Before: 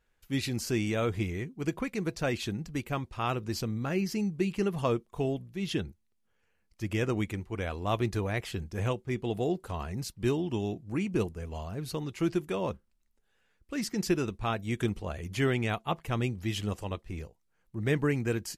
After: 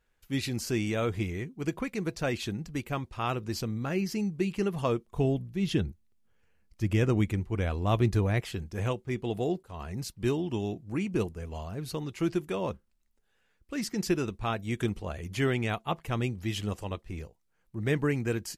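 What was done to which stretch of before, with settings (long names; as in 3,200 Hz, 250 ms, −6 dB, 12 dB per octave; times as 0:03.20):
0:05.07–0:08.40: low-shelf EQ 260 Hz +8 dB
0:09.63–0:10.03: fade in equal-power, from −19 dB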